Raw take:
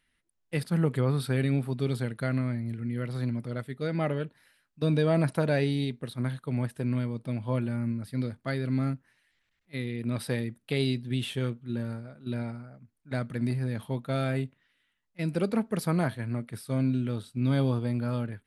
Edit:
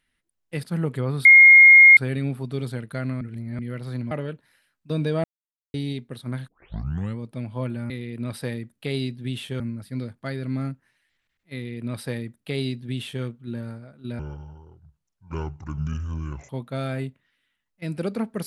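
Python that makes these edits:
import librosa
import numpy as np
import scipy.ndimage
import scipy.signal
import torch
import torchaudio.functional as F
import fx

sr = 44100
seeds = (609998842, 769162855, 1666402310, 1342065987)

y = fx.edit(x, sr, fx.insert_tone(at_s=1.25, length_s=0.72, hz=2140.0, db=-6.5),
    fx.reverse_span(start_s=2.49, length_s=0.38),
    fx.cut(start_s=3.39, length_s=0.64),
    fx.silence(start_s=5.16, length_s=0.5),
    fx.tape_start(start_s=6.4, length_s=0.7),
    fx.duplicate(start_s=9.76, length_s=1.7, to_s=7.82),
    fx.speed_span(start_s=12.41, length_s=1.45, speed=0.63), tone=tone)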